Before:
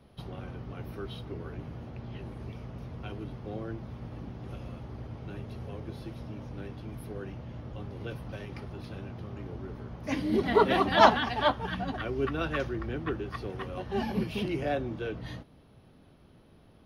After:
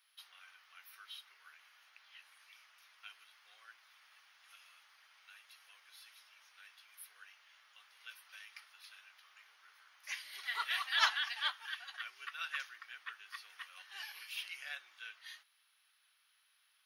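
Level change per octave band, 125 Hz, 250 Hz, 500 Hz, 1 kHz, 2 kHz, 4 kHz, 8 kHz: below −40 dB, below −40 dB, −36.5 dB, −16.0 dB, −4.0 dB, −1.5 dB, +1.5 dB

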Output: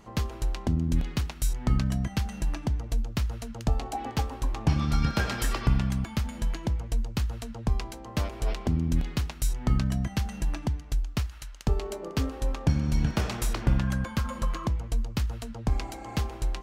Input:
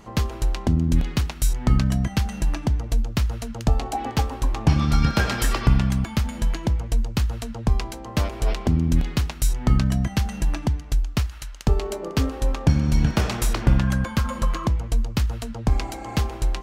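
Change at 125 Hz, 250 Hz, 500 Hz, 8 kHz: −6.0, −6.0, −6.0, −6.0 decibels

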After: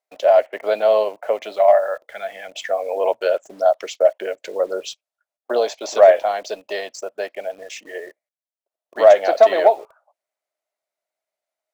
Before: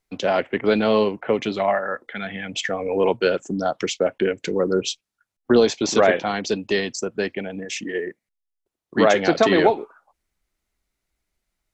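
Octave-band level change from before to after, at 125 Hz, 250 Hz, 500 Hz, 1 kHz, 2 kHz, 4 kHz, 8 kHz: below −20 dB, −15.5 dB, +4.5 dB, +3.5 dB, −4.0 dB, −5.0 dB, can't be measured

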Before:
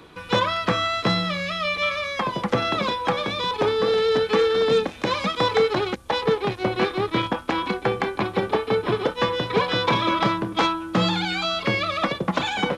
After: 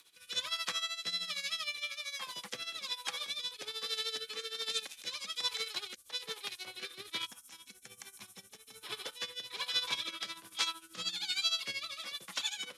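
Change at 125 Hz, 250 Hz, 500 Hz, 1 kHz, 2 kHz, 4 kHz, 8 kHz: below −30 dB, −33.0 dB, −30.0 dB, −24.0 dB, −15.0 dB, −7.0 dB, can't be measured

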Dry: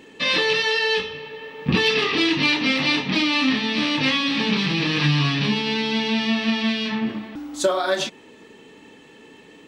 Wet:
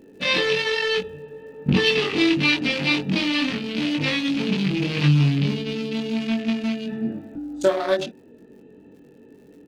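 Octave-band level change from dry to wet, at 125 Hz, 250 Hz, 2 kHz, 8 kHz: +3.5, 0.0, −3.0, −5.0 decibels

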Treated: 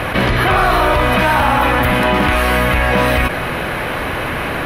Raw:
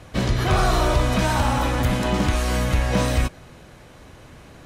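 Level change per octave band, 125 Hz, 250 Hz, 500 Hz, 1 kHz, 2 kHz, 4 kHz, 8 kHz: +2.5, +5.5, +9.0, +11.0, +14.0, +7.5, +0.5 decibels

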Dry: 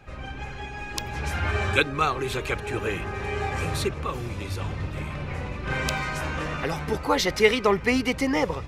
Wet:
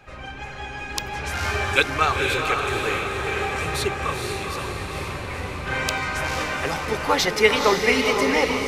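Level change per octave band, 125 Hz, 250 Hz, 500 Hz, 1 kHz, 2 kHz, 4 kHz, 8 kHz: −1.5, −0.5, +3.0, +4.5, +5.0, +5.5, +5.5 decibels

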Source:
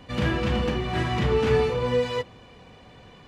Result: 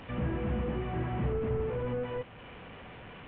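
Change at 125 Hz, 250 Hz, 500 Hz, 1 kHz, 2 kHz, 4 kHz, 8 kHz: −6.5 dB, −7.0 dB, −10.0 dB, −10.0 dB, −13.0 dB, −18.0 dB, can't be measured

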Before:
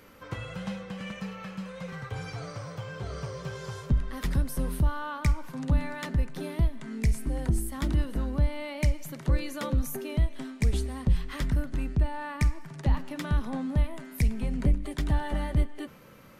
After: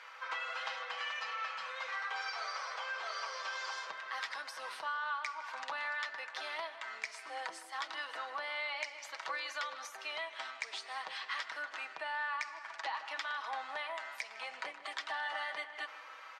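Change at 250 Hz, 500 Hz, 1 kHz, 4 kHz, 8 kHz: −34.5, −10.0, +1.5, +3.0, −8.0 decibels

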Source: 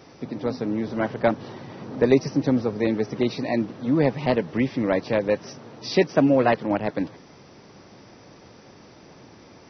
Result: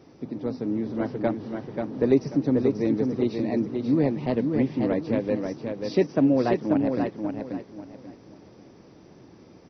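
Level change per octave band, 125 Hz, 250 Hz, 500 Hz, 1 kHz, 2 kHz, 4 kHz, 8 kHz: −1.5 dB, +0.5 dB, −2.5 dB, −6.0 dB, −9.0 dB, −8.5 dB, can't be measured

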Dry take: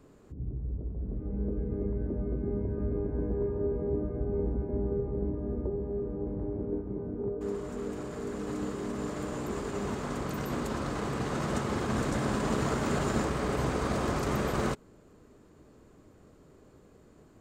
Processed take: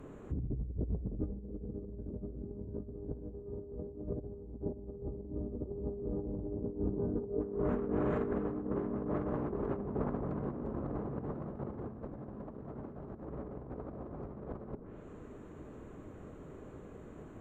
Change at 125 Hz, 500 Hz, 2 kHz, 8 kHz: −6.5 dB, −6.0 dB, −16.0 dB, below −30 dB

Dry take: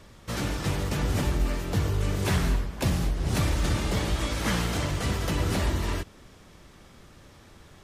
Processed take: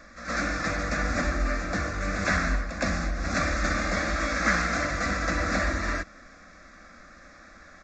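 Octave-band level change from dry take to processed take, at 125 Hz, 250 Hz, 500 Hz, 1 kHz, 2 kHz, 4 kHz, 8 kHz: −6.5, −0.5, +1.0, +5.0, +9.0, −2.5, −0.5 decibels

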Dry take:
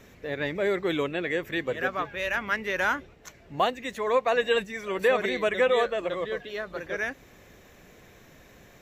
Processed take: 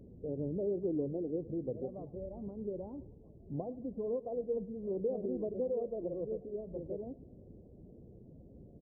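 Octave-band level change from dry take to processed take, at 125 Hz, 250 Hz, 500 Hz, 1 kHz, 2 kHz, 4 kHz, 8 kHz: −1.5 dB, −3.5 dB, −9.5 dB, −24.0 dB, below −40 dB, below −40 dB, below −30 dB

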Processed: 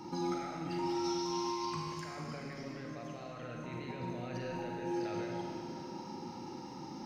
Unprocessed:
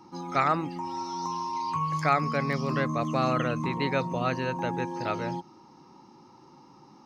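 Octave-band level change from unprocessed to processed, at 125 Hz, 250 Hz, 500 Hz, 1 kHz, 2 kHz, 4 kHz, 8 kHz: −12.0 dB, −6.5 dB, −8.5 dB, −12.5 dB, −14.5 dB, −5.0 dB, can't be measured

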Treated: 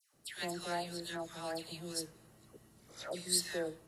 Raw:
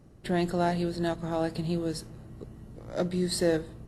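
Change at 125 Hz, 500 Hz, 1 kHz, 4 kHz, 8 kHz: −18.0, −11.5, −9.0, −0.5, +2.5 decibels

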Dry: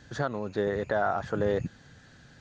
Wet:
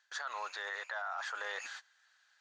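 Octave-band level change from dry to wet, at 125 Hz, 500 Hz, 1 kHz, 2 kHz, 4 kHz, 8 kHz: below −40 dB, −21.0 dB, −8.0 dB, −1.5 dB, +2.0 dB, can't be measured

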